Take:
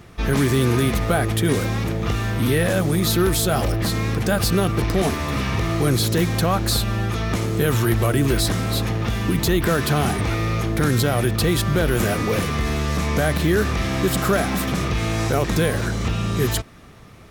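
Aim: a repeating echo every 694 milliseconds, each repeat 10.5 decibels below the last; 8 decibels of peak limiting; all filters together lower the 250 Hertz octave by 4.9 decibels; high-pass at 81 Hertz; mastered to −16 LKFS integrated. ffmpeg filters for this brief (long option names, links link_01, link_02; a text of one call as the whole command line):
ffmpeg -i in.wav -af "highpass=81,equalizer=frequency=250:width_type=o:gain=-7.5,alimiter=limit=-15.5dB:level=0:latency=1,aecho=1:1:694|1388|2082:0.299|0.0896|0.0269,volume=9dB" out.wav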